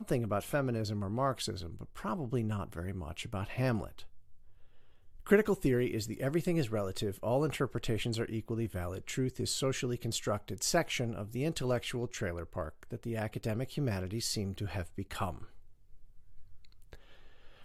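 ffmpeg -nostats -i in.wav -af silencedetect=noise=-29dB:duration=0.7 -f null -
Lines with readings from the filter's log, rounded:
silence_start: 3.84
silence_end: 5.31 | silence_duration: 1.47
silence_start: 15.30
silence_end: 17.65 | silence_duration: 2.35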